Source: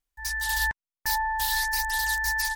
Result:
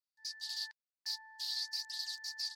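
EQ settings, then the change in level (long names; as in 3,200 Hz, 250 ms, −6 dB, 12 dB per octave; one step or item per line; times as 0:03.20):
resonant band-pass 4,600 Hz, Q 6.6
0.0 dB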